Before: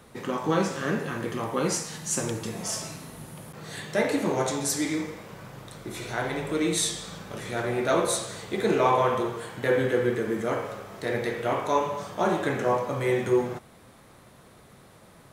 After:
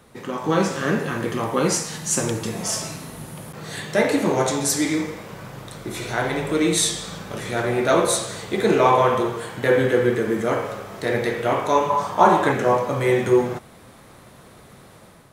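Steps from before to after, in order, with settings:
automatic gain control gain up to 6 dB
0:11.90–0:12.52: parametric band 950 Hz +11.5 dB 0.65 octaves

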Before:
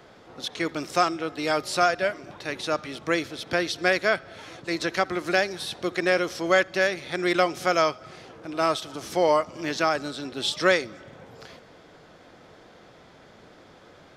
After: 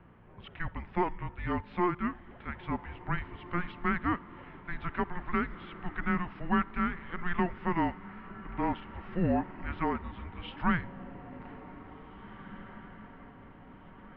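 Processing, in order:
mains hum 60 Hz, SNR 18 dB
single-sideband voice off tune −350 Hz 170–2,800 Hz
feedback delay with all-pass diffusion 1,947 ms, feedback 50%, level −15.5 dB
level −7 dB

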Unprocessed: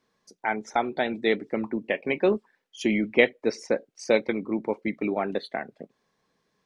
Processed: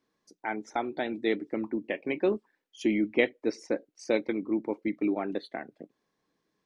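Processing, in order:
parametric band 310 Hz +10 dB 0.36 octaves
level −6.5 dB

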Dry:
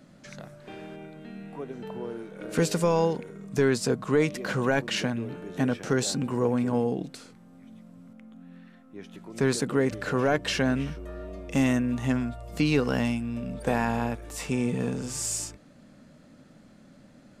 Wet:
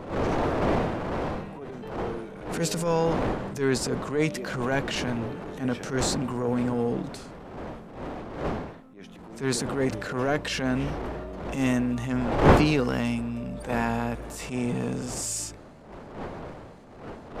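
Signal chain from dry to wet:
wind on the microphone 630 Hz −30 dBFS
transient designer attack −12 dB, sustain +3 dB

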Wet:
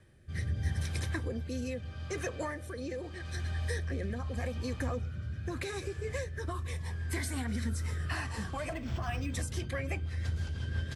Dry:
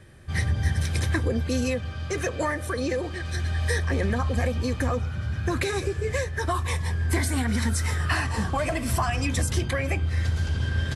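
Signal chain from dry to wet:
rotating-speaker cabinet horn 0.8 Hz, later 6 Hz, at 0:08.71
0:08.73–0:09.34: linearly interpolated sample-rate reduction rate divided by 4×
level −8 dB

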